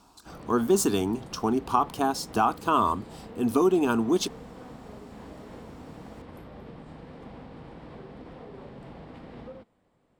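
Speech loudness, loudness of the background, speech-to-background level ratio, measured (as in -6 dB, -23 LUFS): -25.5 LUFS, -45.0 LUFS, 19.5 dB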